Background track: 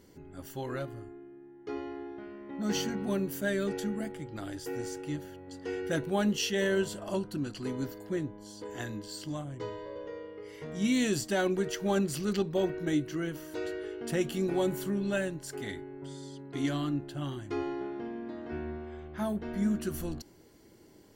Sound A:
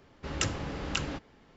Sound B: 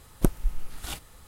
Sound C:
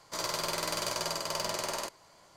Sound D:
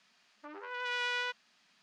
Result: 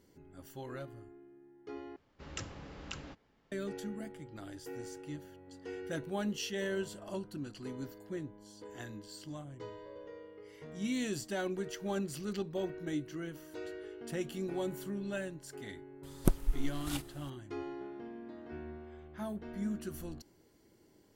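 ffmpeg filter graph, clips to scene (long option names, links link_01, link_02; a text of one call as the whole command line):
ffmpeg -i bed.wav -i cue0.wav -i cue1.wav -filter_complex "[0:a]volume=-7.5dB,asplit=2[link_01][link_02];[link_01]atrim=end=1.964[link_03];[1:a]atrim=end=1.56,asetpts=PTS-STARTPTS,volume=-12dB[link_04];[link_02]atrim=start=3.516[link_05];[2:a]atrim=end=1.27,asetpts=PTS-STARTPTS,volume=-4.5dB,afade=type=in:duration=0.004:curve=hsin,afade=type=out:start_time=1.266:duration=0.004:curve=hsin,adelay=16030[link_06];[link_03][link_04]acrossfade=duration=0.004:curve1=hsin:curve2=hsin[link_07];[link_07][link_05]acrossfade=duration=0.004:curve1=hsin:curve2=hsin[link_08];[link_08][link_06]amix=inputs=2:normalize=0" out.wav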